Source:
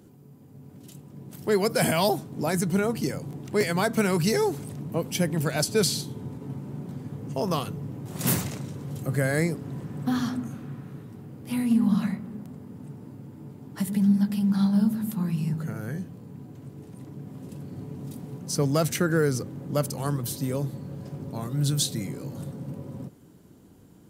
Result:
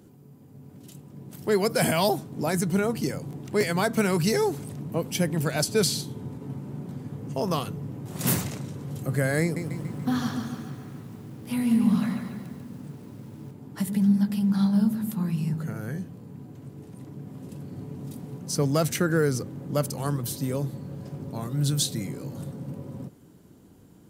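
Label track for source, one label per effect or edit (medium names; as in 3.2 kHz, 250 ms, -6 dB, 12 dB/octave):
9.420000	13.510000	bit-crushed delay 143 ms, feedback 55%, word length 9-bit, level -6 dB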